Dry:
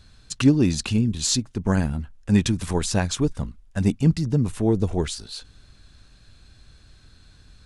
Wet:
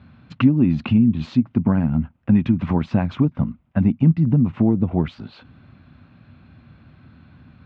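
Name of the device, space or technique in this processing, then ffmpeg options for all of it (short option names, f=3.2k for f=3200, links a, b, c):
bass amplifier: -af "acompressor=threshold=-24dB:ratio=5,highpass=f=84:w=0.5412,highpass=f=84:w=1.3066,equalizer=f=160:t=q:w=4:g=5,equalizer=f=240:t=q:w=4:g=8,equalizer=f=430:t=q:w=4:g=-8,equalizer=f=1.7k:t=q:w=4:g=-8,lowpass=f=2.3k:w=0.5412,lowpass=f=2.3k:w=1.3066,volume=8dB"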